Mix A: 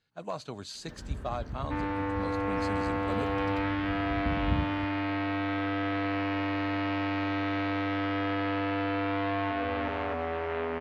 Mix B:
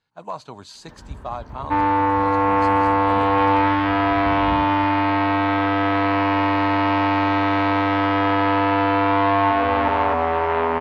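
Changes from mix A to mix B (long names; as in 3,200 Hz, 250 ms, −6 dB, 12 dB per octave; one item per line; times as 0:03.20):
second sound +9.0 dB
master: add parametric band 940 Hz +11 dB 0.59 octaves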